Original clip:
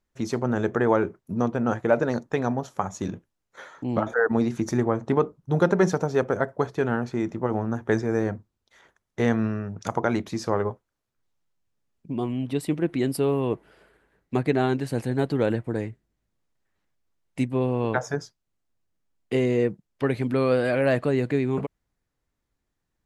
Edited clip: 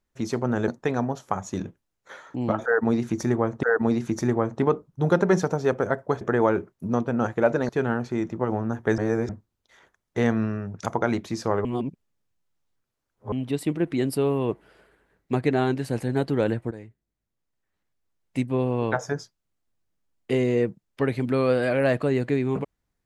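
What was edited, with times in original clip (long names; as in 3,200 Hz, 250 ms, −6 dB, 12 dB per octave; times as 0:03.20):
0:00.68–0:02.16: move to 0:06.71
0:04.13–0:05.11: repeat, 2 plays
0:08.00–0:08.31: reverse
0:10.67–0:12.34: reverse
0:15.73–0:17.54: fade in, from −13 dB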